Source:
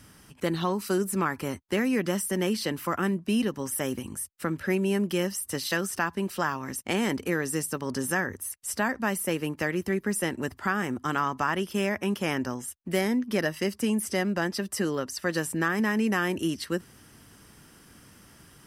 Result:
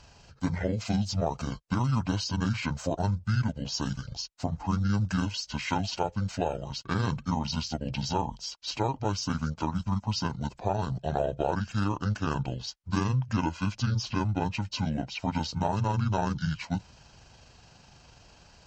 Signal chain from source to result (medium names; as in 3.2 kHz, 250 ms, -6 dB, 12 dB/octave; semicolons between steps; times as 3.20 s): rotating-head pitch shifter -11.5 st